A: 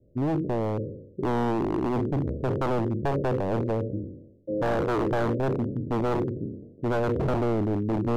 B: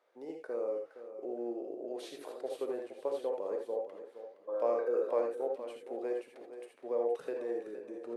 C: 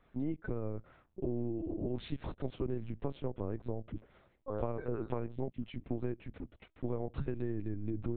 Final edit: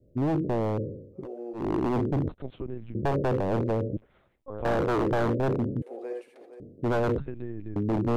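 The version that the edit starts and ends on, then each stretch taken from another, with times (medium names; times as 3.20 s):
A
1.20–1.61 s: from B, crossfade 0.16 s
2.29–2.95 s: from C
3.97–4.65 s: from C
5.82–6.60 s: from B
7.18–7.76 s: from C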